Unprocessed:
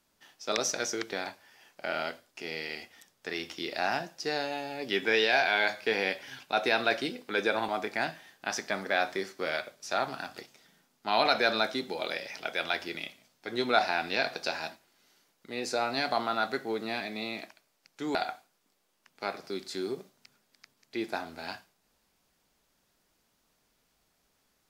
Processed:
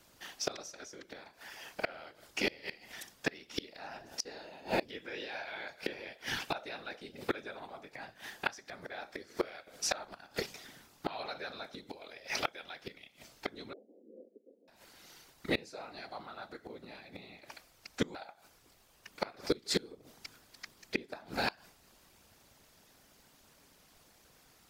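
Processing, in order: whisper effect; inverted gate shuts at -27 dBFS, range -26 dB; 13.73–14.68 s: Chebyshev band-pass 210–520 Hz, order 4; trim +9.5 dB

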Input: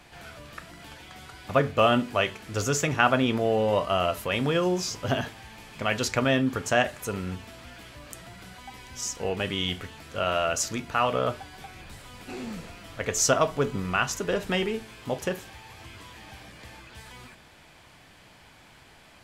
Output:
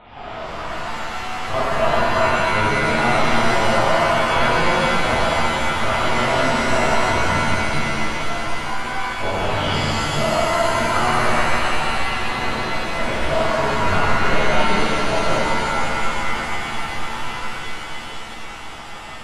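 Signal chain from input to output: high-order bell 840 Hz +10 dB 1.1 oct; compression 5:1, threshold -28 dBFS, peak gain reduction 17 dB; LPC vocoder at 8 kHz pitch kept; pitch-shifted reverb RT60 3.3 s, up +7 st, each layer -2 dB, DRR -10.5 dB

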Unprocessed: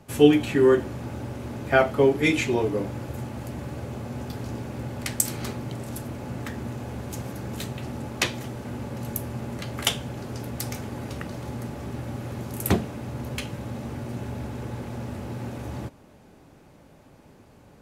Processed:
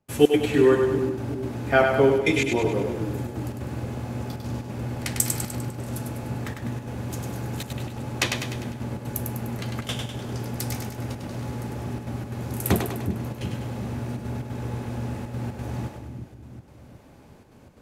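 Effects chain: trance gate ".xx.xxxxxxxxx" 179 bpm -24 dB; two-band feedback delay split 340 Hz, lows 366 ms, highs 100 ms, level -5 dB

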